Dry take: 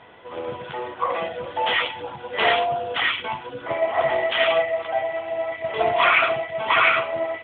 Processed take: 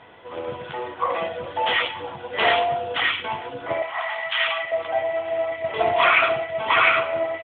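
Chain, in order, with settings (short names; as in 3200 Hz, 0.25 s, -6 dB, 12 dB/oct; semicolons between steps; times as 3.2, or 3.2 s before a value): 3.82–4.72 inverse Chebyshev high-pass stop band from 270 Hz, stop band 60 dB; outdoor echo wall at 160 m, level -19 dB; reverb, pre-delay 5 ms, DRR 14.5 dB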